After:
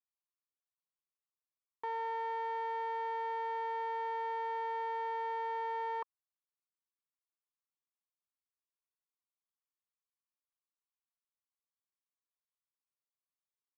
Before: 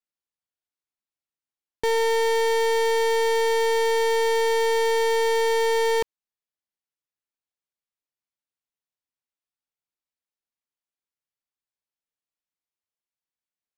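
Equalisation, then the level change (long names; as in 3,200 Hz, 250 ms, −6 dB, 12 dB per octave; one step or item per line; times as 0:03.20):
resonant band-pass 1,100 Hz, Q 5.8
high-frequency loss of the air 130 metres
0.0 dB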